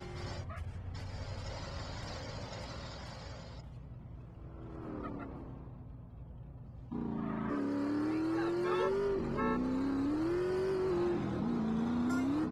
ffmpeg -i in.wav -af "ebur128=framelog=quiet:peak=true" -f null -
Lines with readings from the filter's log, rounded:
Integrated loudness:
  I:         -36.3 LUFS
  Threshold: -47.2 LUFS
Loudness range:
  LRA:        13.2 LU
  Threshold: -57.5 LUFS
  LRA low:   -46.9 LUFS
  LRA high:  -33.7 LUFS
True peak:
  Peak:      -21.1 dBFS